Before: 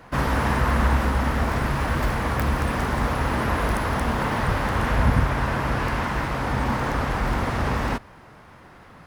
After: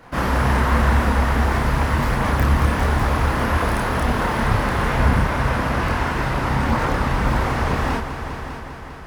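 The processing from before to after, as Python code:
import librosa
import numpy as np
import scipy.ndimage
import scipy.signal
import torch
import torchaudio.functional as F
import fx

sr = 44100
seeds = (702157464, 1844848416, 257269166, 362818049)

p1 = fx.chorus_voices(x, sr, voices=2, hz=1.1, base_ms=29, depth_ms=3.0, mix_pct=50)
p2 = p1 + fx.echo_heads(p1, sr, ms=200, heads='all three', feedback_pct=56, wet_db=-14.0, dry=0)
y = p2 * librosa.db_to_amplitude(5.5)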